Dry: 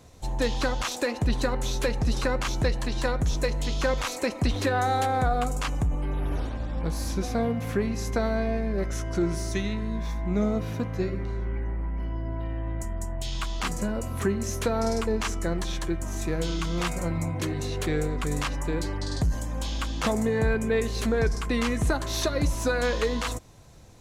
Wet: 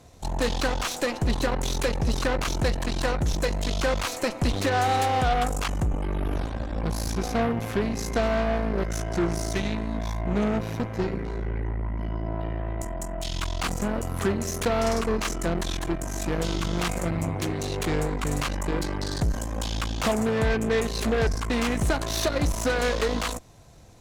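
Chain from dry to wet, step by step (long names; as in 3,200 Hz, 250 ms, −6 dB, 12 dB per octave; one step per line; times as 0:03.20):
parametric band 690 Hz +4.5 dB 0.22 octaves
harmonic generator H 8 −17 dB, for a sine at −13.5 dBFS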